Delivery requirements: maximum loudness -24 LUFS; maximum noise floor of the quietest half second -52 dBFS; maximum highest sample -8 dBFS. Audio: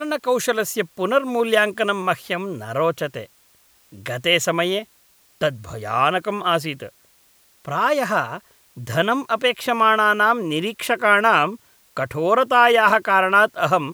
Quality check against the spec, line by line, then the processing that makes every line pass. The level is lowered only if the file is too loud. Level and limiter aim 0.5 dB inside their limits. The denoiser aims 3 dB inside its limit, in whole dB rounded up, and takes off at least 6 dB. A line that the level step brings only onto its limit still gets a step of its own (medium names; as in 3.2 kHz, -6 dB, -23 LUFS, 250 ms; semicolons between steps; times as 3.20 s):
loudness -19.5 LUFS: fail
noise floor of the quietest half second -57 dBFS: pass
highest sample -1.5 dBFS: fail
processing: trim -5 dB; peak limiter -8.5 dBFS